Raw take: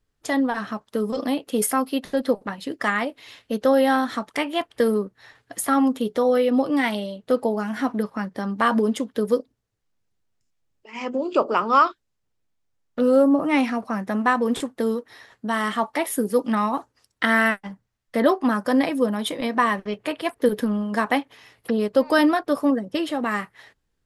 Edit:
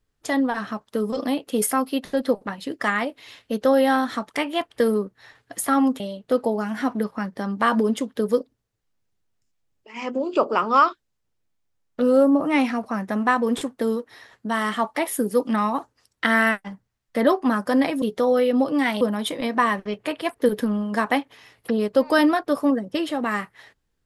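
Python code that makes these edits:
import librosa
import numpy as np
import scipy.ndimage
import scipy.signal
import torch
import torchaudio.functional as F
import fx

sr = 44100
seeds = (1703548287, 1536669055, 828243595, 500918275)

y = fx.edit(x, sr, fx.move(start_s=6.0, length_s=0.99, to_s=19.01), tone=tone)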